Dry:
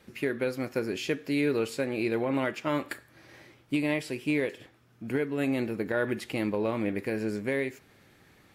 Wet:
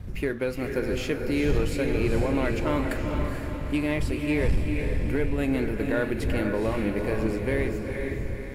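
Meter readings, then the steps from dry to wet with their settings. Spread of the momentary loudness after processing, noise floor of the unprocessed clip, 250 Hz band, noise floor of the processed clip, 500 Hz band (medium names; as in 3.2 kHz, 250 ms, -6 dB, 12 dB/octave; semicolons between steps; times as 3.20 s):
5 LU, -61 dBFS, +3.0 dB, -34 dBFS, +3.0 dB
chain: wind noise 87 Hz -32 dBFS; peaking EQ 4 kHz -2.5 dB 1.5 oct; echo that smears into a reverb 454 ms, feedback 50%, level -4.5 dB; waveshaping leveller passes 1; trim -2 dB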